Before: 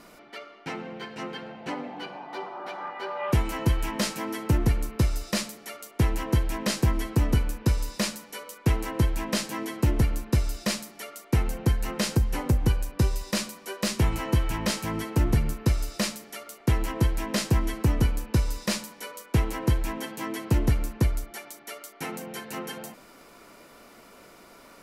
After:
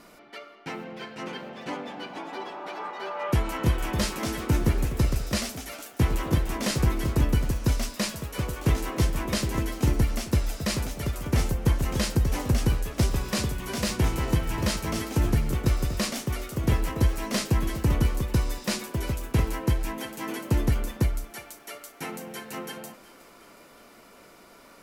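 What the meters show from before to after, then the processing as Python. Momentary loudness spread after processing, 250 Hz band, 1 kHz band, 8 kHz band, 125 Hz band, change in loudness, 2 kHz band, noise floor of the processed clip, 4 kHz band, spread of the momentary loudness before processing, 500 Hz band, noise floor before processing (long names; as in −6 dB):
12 LU, 0.0 dB, 0.0 dB, +0.5 dB, 0.0 dB, 0.0 dB, +0.5 dB, −52 dBFS, 0.0 dB, 13 LU, +0.5 dB, −52 dBFS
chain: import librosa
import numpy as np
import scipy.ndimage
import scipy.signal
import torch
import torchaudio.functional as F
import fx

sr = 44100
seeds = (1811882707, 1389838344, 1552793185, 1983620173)

y = fx.echo_pitch(x, sr, ms=672, semitones=2, count=3, db_per_echo=-6.0)
y = fx.echo_thinned(y, sr, ms=365, feedback_pct=60, hz=420.0, wet_db=-18.5)
y = y * 10.0 ** (-1.0 / 20.0)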